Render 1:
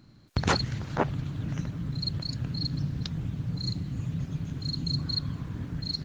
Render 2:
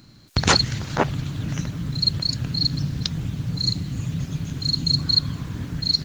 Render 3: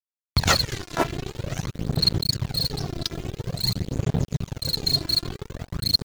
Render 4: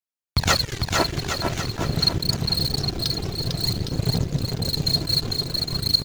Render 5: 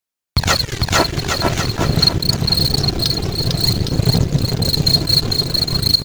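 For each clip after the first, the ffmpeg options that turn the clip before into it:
-af "highshelf=f=2800:g=10.5,volume=1.78"
-af "acrusher=bits=3:mix=0:aa=0.5,aphaser=in_gain=1:out_gain=1:delay=3:decay=0.51:speed=0.49:type=sinusoidal,volume=0.668"
-af "aecho=1:1:450|810|1098|1328|1513:0.631|0.398|0.251|0.158|0.1"
-af "alimiter=limit=0.355:level=0:latency=1:release=462,volume=2.51"

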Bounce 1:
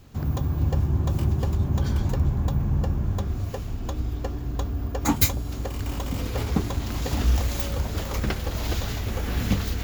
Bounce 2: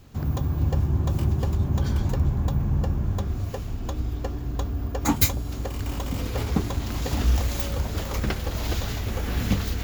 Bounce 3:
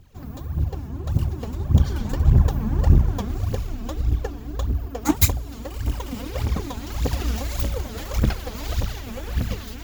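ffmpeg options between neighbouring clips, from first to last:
-af anull
-af "dynaudnorm=f=830:g=5:m=3.98,aphaser=in_gain=1:out_gain=1:delay=4.8:decay=0.7:speed=1.7:type=triangular,aeval=exprs='1.5*(cos(1*acos(clip(val(0)/1.5,-1,1)))-cos(1*PI/2))+0.075*(cos(7*acos(clip(val(0)/1.5,-1,1)))-cos(7*PI/2))':c=same,volume=0.596"

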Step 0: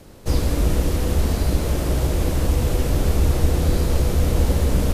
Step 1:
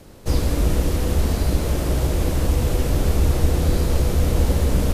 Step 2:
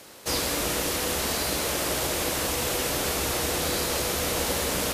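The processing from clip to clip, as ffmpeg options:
-af anull
-af "highpass=f=1400:p=1,volume=2.24"

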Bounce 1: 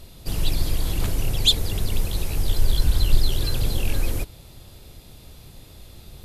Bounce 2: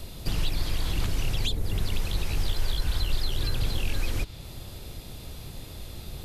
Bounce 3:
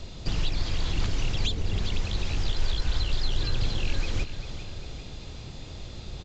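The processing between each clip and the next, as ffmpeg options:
-filter_complex "[0:a]acrossover=split=380|860|2800|6300[s0][s1][s2][s3][s4];[s0]acompressor=threshold=0.0398:ratio=4[s5];[s1]acompressor=threshold=0.00178:ratio=4[s6];[s2]acompressor=threshold=0.00501:ratio=4[s7];[s3]acompressor=threshold=0.00562:ratio=4[s8];[s4]acompressor=threshold=0.00178:ratio=4[s9];[s5][s6][s7][s8][s9]amix=inputs=5:normalize=0,volume=1.68"
-filter_complex "[0:a]asplit=2[s0][s1];[s1]aecho=0:1:396|792|1188|1584|1980|2376:0.282|0.155|0.0853|0.0469|0.0258|0.0142[s2];[s0][s2]amix=inputs=2:normalize=0" -ar 16000 -c:a pcm_alaw

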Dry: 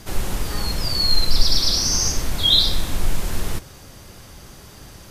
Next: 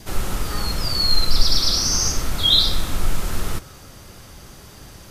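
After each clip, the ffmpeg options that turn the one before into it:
-af "adynamicequalizer=threshold=0.00158:dfrequency=1300:dqfactor=7.1:tfrequency=1300:tqfactor=7.1:attack=5:release=100:ratio=0.375:range=4:mode=boostabove:tftype=bell"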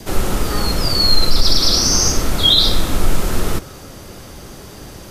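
-filter_complex "[0:a]acrossover=split=220|640|4900[s0][s1][s2][s3];[s1]acontrast=61[s4];[s0][s4][s2][s3]amix=inputs=4:normalize=0,alimiter=level_in=2:limit=0.891:release=50:level=0:latency=1,volume=0.891"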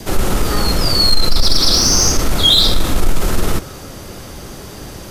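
-af "acontrast=58,volume=0.75"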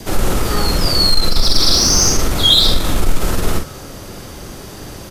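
-filter_complex "[0:a]asplit=2[s0][s1];[s1]adelay=46,volume=0.473[s2];[s0][s2]amix=inputs=2:normalize=0,volume=0.891"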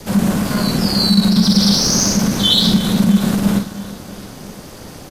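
-af "aecho=1:1:331|662|993|1324|1655:0.158|0.0808|0.0412|0.021|0.0107,aeval=exprs='val(0)*sin(2*PI*200*n/s)':c=same"

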